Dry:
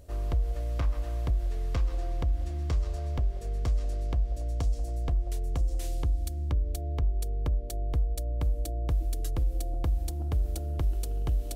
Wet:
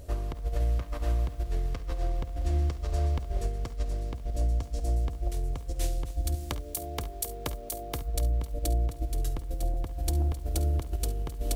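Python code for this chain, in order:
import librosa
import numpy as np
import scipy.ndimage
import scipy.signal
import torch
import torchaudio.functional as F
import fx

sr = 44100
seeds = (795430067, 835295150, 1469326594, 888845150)

y = fx.riaa(x, sr, side='recording', at=(6.35, 8.02))
y = fx.over_compress(y, sr, threshold_db=-31.0, ratio=-0.5)
y = fx.room_early_taps(y, sr, ms=(52, 69), db=(-17.0, -17.0))
y = fx.echo_crushed(y, sr, ms=262, feedback_pct=35, bits=8, wet_db=-15)
y = y * librosa.db_to_amplitude(2.5)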